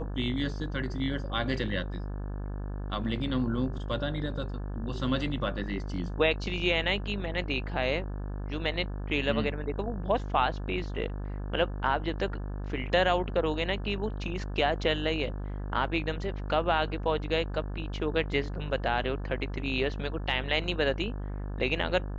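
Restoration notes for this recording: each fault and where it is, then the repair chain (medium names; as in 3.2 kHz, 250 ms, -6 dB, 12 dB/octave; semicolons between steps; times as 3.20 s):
buzz 50 Hz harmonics 35 -35 dBFS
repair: de-hum 50 Hz, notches 35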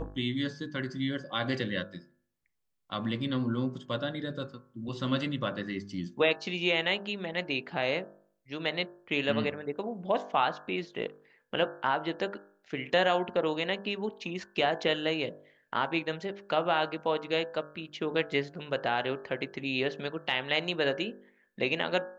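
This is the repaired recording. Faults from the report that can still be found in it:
nothing left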